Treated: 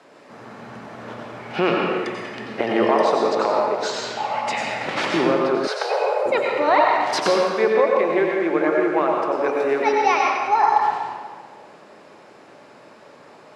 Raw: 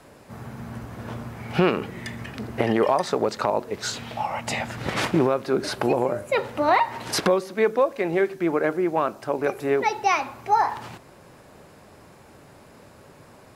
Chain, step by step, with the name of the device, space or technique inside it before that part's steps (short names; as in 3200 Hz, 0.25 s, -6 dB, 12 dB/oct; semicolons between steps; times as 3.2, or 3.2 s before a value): supermarket ceiling speaker (BPF 290–5500 Hz; reverb RT60 1.6 s, pre-delay 84 ms, DRR -1.5 dB); 5.67–6.26 steep high-pass 420 Hz 96 dB/oct; gain +1 dB